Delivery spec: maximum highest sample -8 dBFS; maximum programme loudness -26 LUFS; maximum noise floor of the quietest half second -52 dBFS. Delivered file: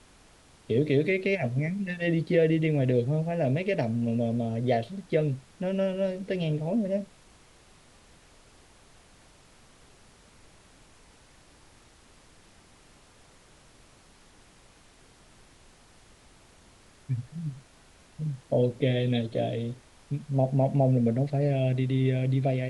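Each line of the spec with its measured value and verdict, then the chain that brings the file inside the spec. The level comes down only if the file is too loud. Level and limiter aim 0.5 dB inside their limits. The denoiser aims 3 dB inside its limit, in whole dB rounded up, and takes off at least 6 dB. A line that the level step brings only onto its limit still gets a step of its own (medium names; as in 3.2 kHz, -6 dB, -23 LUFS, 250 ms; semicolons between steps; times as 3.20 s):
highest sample -12.0 dBFS: pass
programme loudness -27.5 LUFS: pass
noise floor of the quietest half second -57 dBFS: pass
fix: none needed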